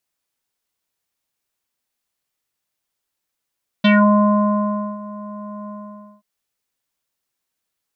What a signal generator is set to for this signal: synth note square G#3 24 dB/oct, low-pass 970 Hz, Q 3.7, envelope 2 oct, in 0.20 s, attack 9.2 ms, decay 1.13 s, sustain -20.5 dB, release 0.54 s, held 1.84 s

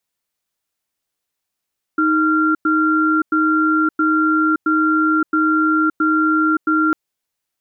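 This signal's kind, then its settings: cadence 313 Hz, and 1380 Hz, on 0.57 s, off 0.10 s, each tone -15.5 dBFS 4.95 s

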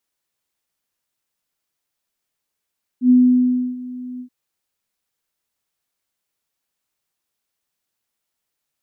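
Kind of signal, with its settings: ADSR sine 250 Hz, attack 89 ms, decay 0.66 s, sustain -20 dB, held 1.19 s, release 88 ms -7.5 dBFS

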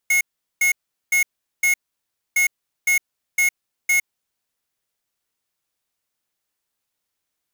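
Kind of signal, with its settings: beep pattern square 2170 Hz, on 0.11 s, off 0.40 s, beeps 4, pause 0.62 s, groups 2, -17 dBFS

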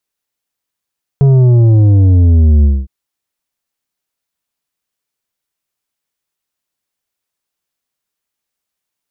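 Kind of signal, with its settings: sub drop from 140 Hz, over 1.66 s, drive 8 dB, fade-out 0.23 s, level -5.5 dB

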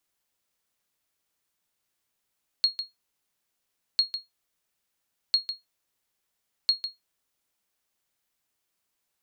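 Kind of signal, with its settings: sonar ping 4290 Hz, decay 0.17 s, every 1.35 s, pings 4, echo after 0.15 s, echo -10 dB -13 dBFS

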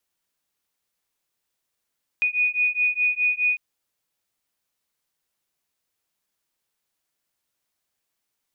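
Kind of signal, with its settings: beating tones 2470 Hz, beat 4.8 Hz, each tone -22.5 dBFS 1.35 s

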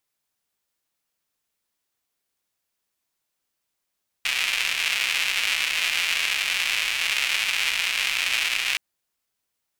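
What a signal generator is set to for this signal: rain from filtered ticks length 4.52 s, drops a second 300, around 2500 Hz, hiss -29 dB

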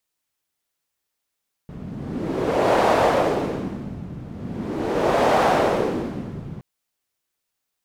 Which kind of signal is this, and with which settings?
wind-like swept noise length 4.92 s, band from 150 Hz, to 680 Hz, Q 1.7, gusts 2, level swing 17 dB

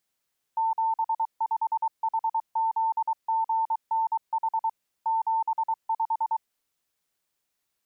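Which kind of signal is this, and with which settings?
Morse "75HZGNH 75" 23 wpm 896 Hz -22 dBFS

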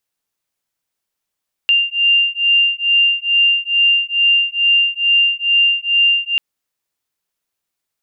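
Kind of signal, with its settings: beating tones 2790 Hz, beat 2.3 Hz, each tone -14.5 dBFS 4.69 s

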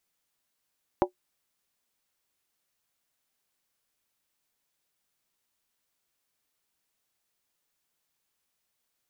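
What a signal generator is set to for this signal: skin hit, lowest mode 363 Hz, decay 0.11 s, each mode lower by 2 dB, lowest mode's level -17 dB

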